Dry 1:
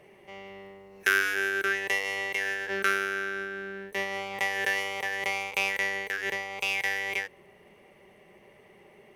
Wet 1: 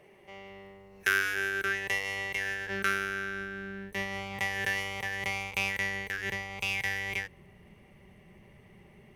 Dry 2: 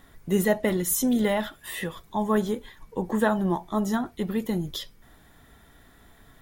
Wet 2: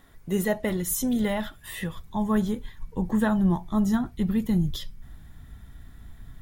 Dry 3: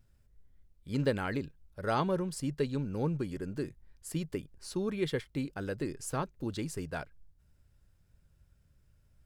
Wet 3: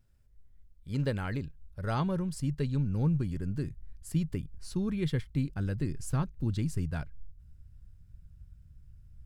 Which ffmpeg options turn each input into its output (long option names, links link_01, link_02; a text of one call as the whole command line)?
ffmpeg -i in.wav -af "asubboost=boost=7:cutoff=170,volume=-2.5dB" out.wav